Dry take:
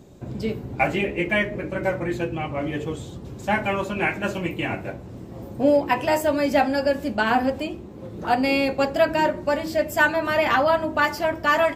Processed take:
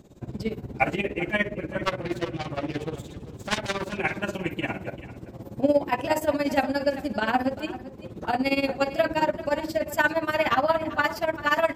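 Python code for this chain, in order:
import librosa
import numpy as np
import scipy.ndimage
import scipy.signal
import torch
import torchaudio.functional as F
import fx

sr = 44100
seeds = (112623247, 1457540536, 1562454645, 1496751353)

y = fx.self_delay(x, sr, depth_ms=0.54, at=(1.82, 3.93))
y = y * (1.0 - 0.83 / 2.0 + 0.83 / 2.0 * np.cos(2.0 * np.pi * 17.0 * (np.arange(len(y)) / sr)))
y = y + 10.0 ** (-16.0 / 20.0) * np.pad(y, (int(391 * sr / 1000.0), 0))[:len(y)]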